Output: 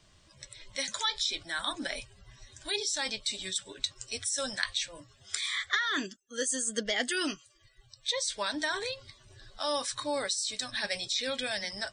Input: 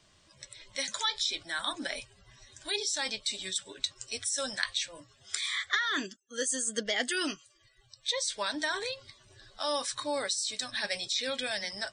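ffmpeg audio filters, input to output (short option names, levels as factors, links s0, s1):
-af "lowshelf=f=110:g=8.5"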